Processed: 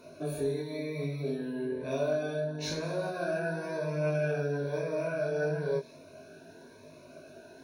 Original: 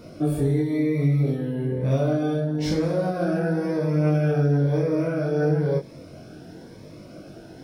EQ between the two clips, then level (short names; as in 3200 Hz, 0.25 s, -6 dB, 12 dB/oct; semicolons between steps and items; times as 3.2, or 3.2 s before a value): ripple EQ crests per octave 1.5, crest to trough 13 dB; dynamic EQ 4500 Hz, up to +5 dB, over -53 dBFS, Q 1.1; tone controls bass -13 dB, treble -1 dB; -6.5 dB